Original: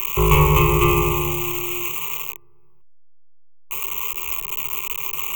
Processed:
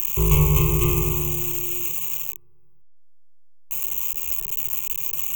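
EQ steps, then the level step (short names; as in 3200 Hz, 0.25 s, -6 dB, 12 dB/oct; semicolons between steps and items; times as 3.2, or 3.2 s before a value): EQ curve 140 Hz 0 dB, 1600 Hz -15 dB, 5600 Hz +2 dB; -1.0 dB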